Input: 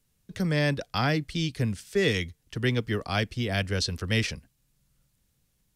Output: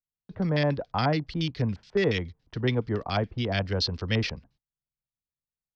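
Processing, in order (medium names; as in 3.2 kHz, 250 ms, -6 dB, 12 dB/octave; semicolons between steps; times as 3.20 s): gate -59 dBFS, range -30 dB; LFO low-pass square 7.1 Hz 910–4800 Hz; distance through air 140 m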